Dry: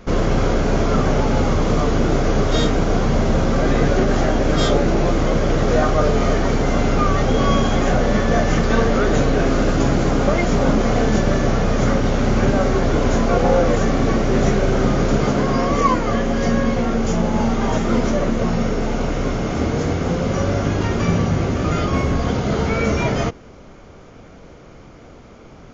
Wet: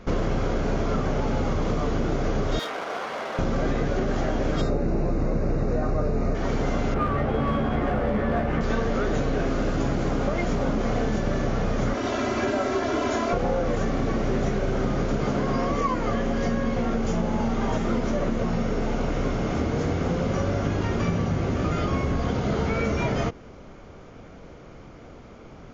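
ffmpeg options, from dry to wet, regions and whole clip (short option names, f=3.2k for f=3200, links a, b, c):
-filter_complex "[0:a]asettb=1/sr,asplit=3[a][b][c];[a]atrim=end=2.594[d];[b]atrim=start=2.59:end=3.39,asetpts=PTS-STARTPTS,afade=t=in:d=0.004:c=qsin,afade=t=out:st=0.796:d=0.004:c=qsin,highpass=780,adynamicsmooth=sensitivity=5.5:basefreq=2.1k[e];[c]atrim=start=3.386[f];[d][e]acrossfade=d=0.004:c1=hsin:c2=qsin[g];[g][f]acrossfade=d=0.004:c1=qsin:c2=hsin,asettb=1/sr,asplit=3[h][i][j];[h]atrim=end=4.614[k];[i]atrim=start=4.61:end=6.35,asetpts=PTS-STARTPTS,afade=t=in:d=0.004:c=qsin,afade=t=out:st=1.736:d=0.004:c=qsin,asuperstop=centerf=3200:order=12:qfactor=4.2,tiltshelf=f=720:g=5[l];[j]atrim=start=6.346[m];[k][l]acrossfade=d=0.004:c1=hsin:c2=qsin[n];[n][m]acrossfade=d=0.004:c1=qsin:c2=hsin,asettb=1/sr,asplit=3[o][p][q];[o]atrim=end=6.944[r];[p]atrim=start=6.94:end=8.61,asetpts=PTS-STARTPTS,afade=t=in:d=0.004:c=qsin,afade=t=out:st=1.666:d=0.004:c=qsin,lowpass=2.2k,asoftclip=type=hard:threshold=-11.5dB,asplit=2[s][t];[t]adelay=14,volume=-3dB[u];[s][u]amix=inputs=2:normalize=0,atrim=end_sample=73647[v];[q]atrim=start=8.606[w];[r][v]acrossfade=d=0.004:c1=hsin:c2=qsin[x];[x][w]acrossfade=d=0.004:c1=qsin:c2=hsin,asettb=1/sr,asplit=3[y][z][aa];[y]atrim=end=11.944[ab];[z]atrim=start=11.94:end=13.33,asetpts=PTS-STARTPTS,afade=t=in:d=0.004:c=qsin,afade=t=out:st=1.386:d=0.004:c=qsin,highpass=100,lowshelf=f=330:g=-8.5,aecho=1:1:3:0.81,atrim=end_sample=61299[ac];[aa]atrim=start=13.326[ad];[ab][ac]acrossfade=d=0.004:c1=hsin:c2=qsin[ae];[ae][ad]acrossfade=d=0.004:c1=qsin:c2=hsin,highshelf=f=6.2k:g=-7,acompressor=threshold=-18dB:ratio=6,volume=-2.5dB"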